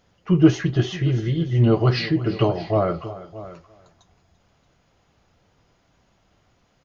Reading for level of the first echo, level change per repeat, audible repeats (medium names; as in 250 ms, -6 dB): -17.0 dB, no regular repeats, 3